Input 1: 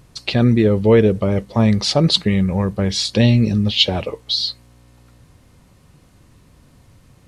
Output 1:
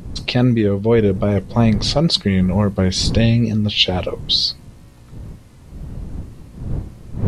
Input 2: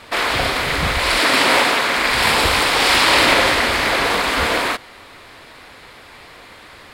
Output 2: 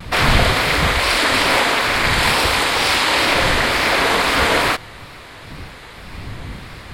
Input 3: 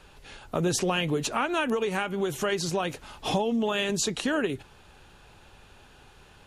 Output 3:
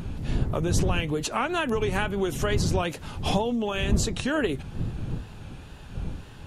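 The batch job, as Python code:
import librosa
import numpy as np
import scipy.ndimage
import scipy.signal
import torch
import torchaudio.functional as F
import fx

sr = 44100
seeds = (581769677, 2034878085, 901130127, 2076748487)

y = fx.dmg_wind(x, sr, seeds[0], corner_hz=130.0, level_db=-29.0)
y = fx.wow_flutter(y, sr, seeds[1], rate_hz=2.1, depth_cents=71.0)
y = fx.rider(y, sr, range_db=4, speed_s=0.5)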